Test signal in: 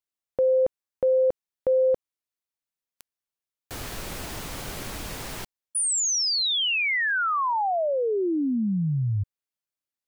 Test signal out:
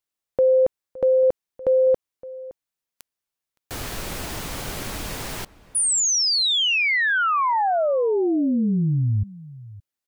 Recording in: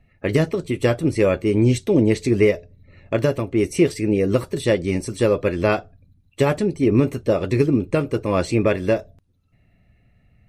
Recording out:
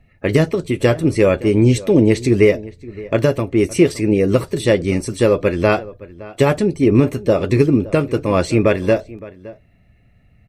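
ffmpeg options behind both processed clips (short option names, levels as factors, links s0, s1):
-filter_complex "[0:a]asplit=2[s0][s1];[s1]adelay=565.6,volume=0.112,highshelf=f=4000:g=-12.7[s2];[s0][s2]amix=inputs=2:normalize=0,volume=1.58"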